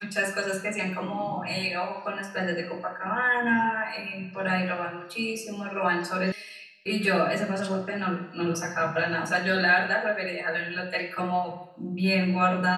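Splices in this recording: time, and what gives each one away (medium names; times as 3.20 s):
6.32 s: sound stops dead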